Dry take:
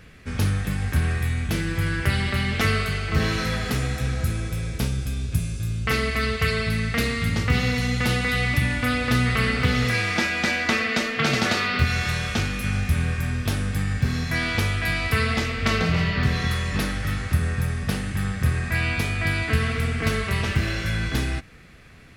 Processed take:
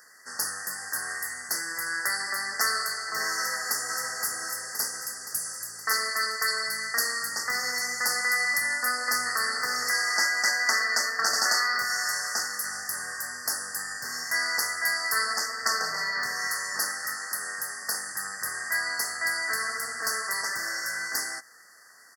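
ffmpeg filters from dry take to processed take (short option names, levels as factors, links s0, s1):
-filter_complex "[0:a]asplit=2[s0][s1];[s1]afade=t=in:st=3.36:d=0.01,afade=t=out:st=4.03:d=0.01,aecho=0:1:520|1040|1560|2080|2600|3120|3640|4160|4680:0.595662|0.357397|0.214438|0.128663|0.0771978|0.0463187|0.0277912|0.0166747|0.0100048[s2];[s0][s2]amix=inputs=2:normalize=0,asettb=1/sr,asplit=3[s3][s4][s5];[s3]atrim=end=17.154[s6];[s4]atrim=start=17.15:end=17.98,asetpts=PTS-STARTPTS,afade=t=in:d=0.004:c=qsin,afade=t=out:st=0.826:d=0.004:c=qsin,highpass=160[s7];[s5]atrim=start=17.976[s8];[s6][s7]acrossfade=d=0.004:c1=hsin:c2=qsin[s9];[s9][s8]acrossfade=d=0.004:c1=qsin:c2=hsin,highpass=970,highshelf=f=3900:g=10.5,afftfilt=real='re*(1-between(b*sr/4096,2000,4400))':imag='im*(1-between(b*sr/4096,2000,4400))':win_size=4096:overlap=0.75"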